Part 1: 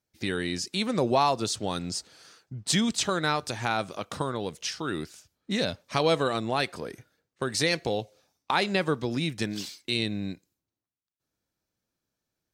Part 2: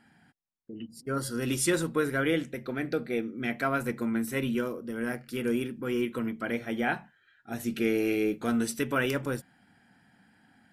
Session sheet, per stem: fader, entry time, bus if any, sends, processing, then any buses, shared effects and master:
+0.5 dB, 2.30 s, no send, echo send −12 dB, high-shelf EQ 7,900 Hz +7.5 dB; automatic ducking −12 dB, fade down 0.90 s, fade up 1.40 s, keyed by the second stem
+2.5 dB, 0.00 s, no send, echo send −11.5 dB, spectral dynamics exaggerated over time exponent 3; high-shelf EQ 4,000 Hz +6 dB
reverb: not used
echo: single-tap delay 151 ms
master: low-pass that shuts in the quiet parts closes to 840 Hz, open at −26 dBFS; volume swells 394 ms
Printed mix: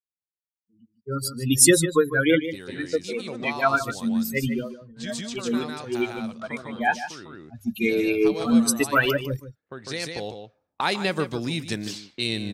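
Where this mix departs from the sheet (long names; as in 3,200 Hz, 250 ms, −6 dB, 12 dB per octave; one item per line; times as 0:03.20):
stem 2 +2.5 dB → +12.5 dB
master: missing volume swells 394 ms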